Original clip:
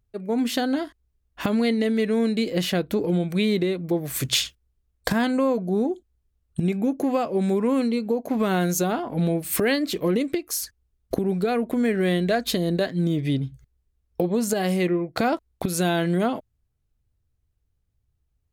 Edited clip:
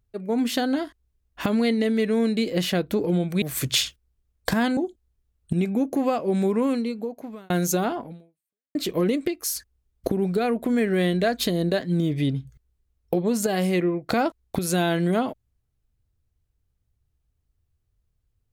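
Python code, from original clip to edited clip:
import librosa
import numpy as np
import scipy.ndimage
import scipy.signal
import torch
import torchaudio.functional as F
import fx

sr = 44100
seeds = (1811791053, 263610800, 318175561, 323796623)

y = fx.edit(x, sr, fx.cut(start_s=3.42, length_s=0.59),
    fx.cut(start_s=5.36, length_s=0.48),
    fx.fade_out_span(start_s=7.63, length_s=0.94),
    fx.fade_out_span(start_s=9.07, length_s=0.75, curve='exp'), tone=tone)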